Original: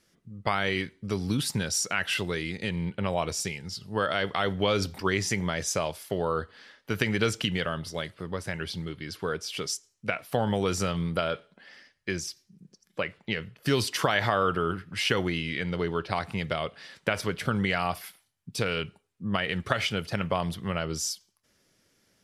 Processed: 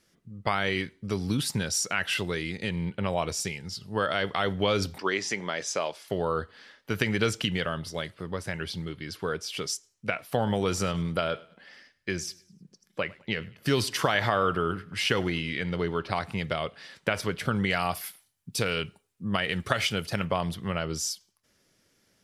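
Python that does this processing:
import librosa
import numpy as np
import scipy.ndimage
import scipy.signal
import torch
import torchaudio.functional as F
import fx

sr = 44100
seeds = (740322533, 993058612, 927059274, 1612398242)

y = fx.bandpass_edges(x, sr, low_hz=290.0, high_hz=6700.0, at=(4.98, 6.08))
y = fx.echo_feedback(y, sr, ms=103, feedback_pct=38, wet_db=-22.5, at=(10.31, 16.24))
y = fx.high_shelf(y, sr, hz=6000.0, db=8.0, at=(17.7, 20.25))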